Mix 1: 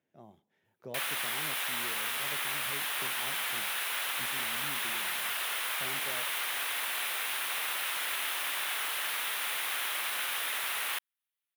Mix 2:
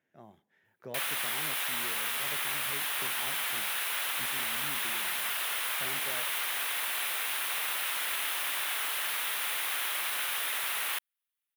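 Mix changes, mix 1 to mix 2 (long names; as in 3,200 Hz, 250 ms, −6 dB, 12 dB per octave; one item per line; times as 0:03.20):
speech: add parametric band 1,700 Hz +9 dB 0.91 octaves
master: add high-shelf EQ 10,000 Hz +3.5 dB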